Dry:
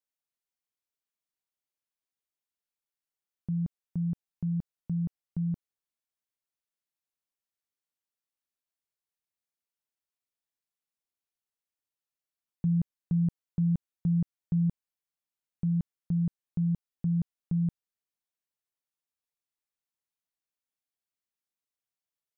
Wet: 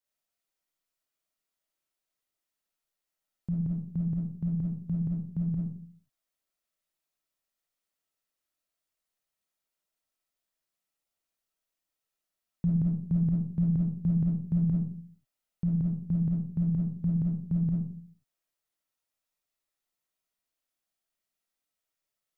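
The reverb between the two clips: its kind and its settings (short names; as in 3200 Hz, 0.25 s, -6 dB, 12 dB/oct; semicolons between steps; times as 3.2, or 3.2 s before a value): digital reverb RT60 0.48 s, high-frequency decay 0.35×, pre-delay 10 ms, DRR -4.5 dB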